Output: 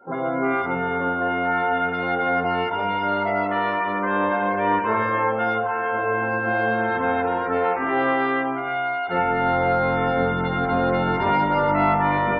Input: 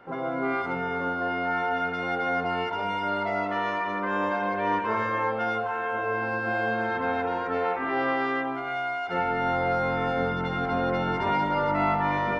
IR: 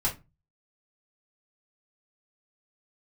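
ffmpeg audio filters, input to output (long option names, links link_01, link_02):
-af "highshelf=frequency=3400:gain=-4.5,afftdn=noise_reduction=25:noise_floor=-48,volume=5.5dB"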